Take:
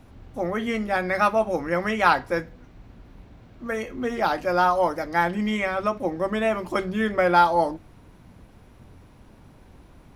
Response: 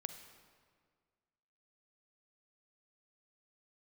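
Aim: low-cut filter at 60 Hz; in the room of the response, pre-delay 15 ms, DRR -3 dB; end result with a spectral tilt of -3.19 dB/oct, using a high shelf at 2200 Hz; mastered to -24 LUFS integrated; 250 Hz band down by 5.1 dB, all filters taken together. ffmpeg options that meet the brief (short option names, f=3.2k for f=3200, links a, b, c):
-filter_complex "[0:a]highpass=60,equalizer=f=250:t=o:g=-7,highshelf=f=2.2k:g=-4.5,asplit=2[a][b];[1:a]atrim=start_sample=2205,adelay=15[c];[b][c]afir=irnorm=-1:irlink=0,volume=5.5dB[d];[a][d]amix=inputs=2:normalize=0,volume=-4dB"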